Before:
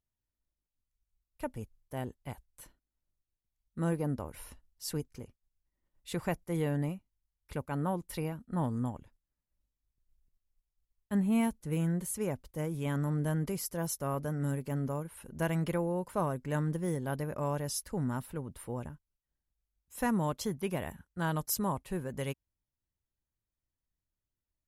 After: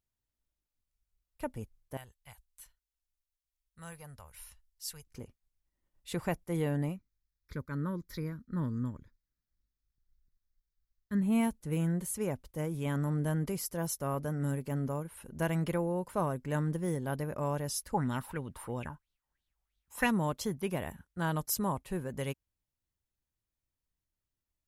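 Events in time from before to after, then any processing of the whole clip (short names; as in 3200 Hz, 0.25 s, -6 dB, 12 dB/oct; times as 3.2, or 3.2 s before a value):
1.97–5.07 passive tone stack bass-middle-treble 10-0-10
6.96–11.22 fixed phaser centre 2800 Hz, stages 6
17.94–20.12 LFO bell 3 Hz 820–3800 Hz +17 dB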